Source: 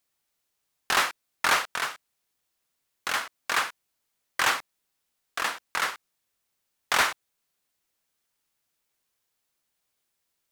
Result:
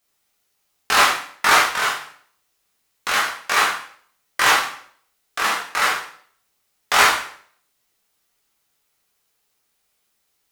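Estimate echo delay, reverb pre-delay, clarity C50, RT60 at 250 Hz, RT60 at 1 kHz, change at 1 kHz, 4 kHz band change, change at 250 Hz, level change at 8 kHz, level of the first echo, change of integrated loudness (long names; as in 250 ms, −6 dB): no echo audible, 6 ms, 5.5 dB, 0.60 s, 0.55 s, +9.5 dB, +8.5 dB, +8.0 dB, +8.5 dB, no echo audible, +8.5 dB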